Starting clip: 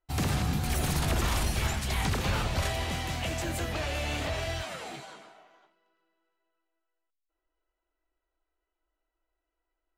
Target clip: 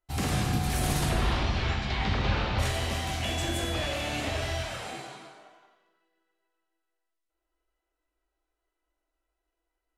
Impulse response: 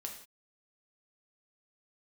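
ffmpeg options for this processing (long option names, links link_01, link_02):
-filter_complex "[0:a]asplit=3[link_01][link_02][link_03];[link_01]afade=type=out:start_time=1.08:duration=0.02[link_04];[link_02]lowpass=frequency=4600:width=0.5412,lowpass=frequency=4600:width=1.3066,afade=type=in:start_time=1.08:duration=0.02,afade=type=out:start_time=2.58:duration=0.02[link_05];[link_03]afade=type=in:start_time=2.58:duration=0.02[link_06];[link_04][link_05][link_06]amix=inputs=3:normalize=0,asettb=1/sr,asplit=3[link_07][link_08][link_09];[link_07]atrim=end=3.244[link_10];[link_08]atrim=start=3.24:end=3.93,asetpts=PTS-STARTPTS,afade=type=in:duration=0.004:curve=qsin,afade=type=out:start_time=0.686:duration=0.004:curve=qsin,aeval=exprs='val(0)+0.0178*sin(2*PI*3400*n/s)':channel_layout=same[link_11];[link_09]atrim=start=3.926[link_12];[link_10][link_11]acrossfade=duration=0.004:curve1=hsin:curve2=qsin[link_13];[link_13][link_12]acrossfade=duration=0.004:curve1=qsin:curve2=hsin[link_14];[1:a]atrim=start_sample=2205,asetrate=26019,aresample=44100[link_15];[link_14][link_15]afir=irnorm=-1:irlink=0"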